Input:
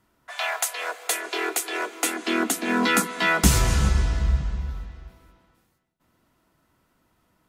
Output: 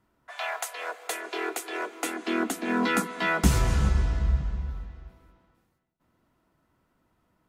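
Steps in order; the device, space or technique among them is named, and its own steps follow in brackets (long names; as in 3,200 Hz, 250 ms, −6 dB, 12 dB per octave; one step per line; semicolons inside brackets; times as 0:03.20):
behind a face mask (high-shelf EQ 2,500 Hz −8 dB)
level −2.5 dB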